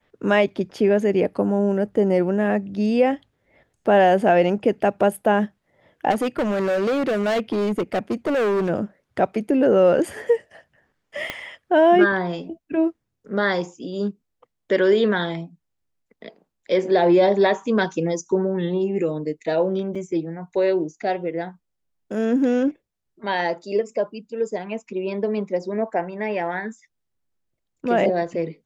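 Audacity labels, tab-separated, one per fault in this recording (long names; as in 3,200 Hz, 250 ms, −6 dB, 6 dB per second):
6.100000	8.700000	clipping −18.5 dBFS
11.300000	11.300000	click −12 dBFS
19.950000	19.960000	drop-out 5.1 ms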